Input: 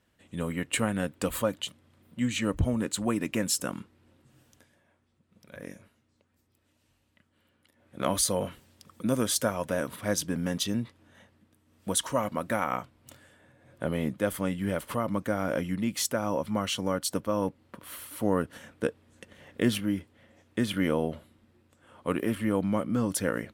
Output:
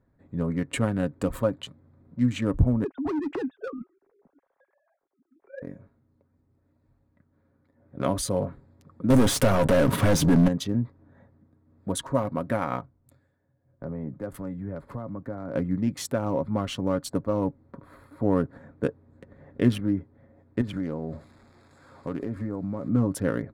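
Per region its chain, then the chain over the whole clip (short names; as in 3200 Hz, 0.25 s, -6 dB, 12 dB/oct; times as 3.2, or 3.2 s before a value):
2.84–5.62 sine-wave speech + hard clip -28.5 dBFS
9.1–10.48 sample leveller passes 5 + compressor 12:1, threshold -20 dBFS
12.81–15.55 compressor 2.5:1, threshold -36 dBFS + three-band expander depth 70%
20.61–22.89 switching spikes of -29.5 dBFS + LPF 8700 Hz + compressor 4:1, threshold -30 dBFS
whole clip: Wiener smoothing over 15 samples; tilt -2 dB/oct; comb 7.3 ms, depth 33%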